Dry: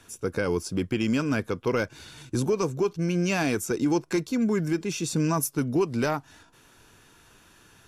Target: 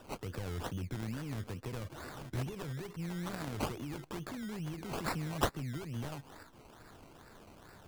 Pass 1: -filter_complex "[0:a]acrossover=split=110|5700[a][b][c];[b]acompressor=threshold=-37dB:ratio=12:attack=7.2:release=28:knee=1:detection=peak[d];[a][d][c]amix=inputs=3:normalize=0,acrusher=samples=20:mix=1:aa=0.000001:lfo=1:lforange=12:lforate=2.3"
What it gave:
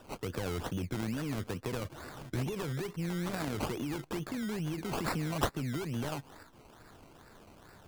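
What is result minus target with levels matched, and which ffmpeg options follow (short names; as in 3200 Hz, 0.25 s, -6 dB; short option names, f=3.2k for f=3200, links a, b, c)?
compressor: peak gain reduction -8 dB
-filter_complex "[0:a]acrossover=split=110|5700[a][b][c];[b]acompressor=threshold=-45.5dB:ratio=12:attack=7.2:release=28:knee=1:detection=peak[d];[a][d][c]amix=inputs=3:normalize=0,acrusher=samples=20:mix=1:aa=0.000001:lfo=1:lforange=12:lforate=2.3"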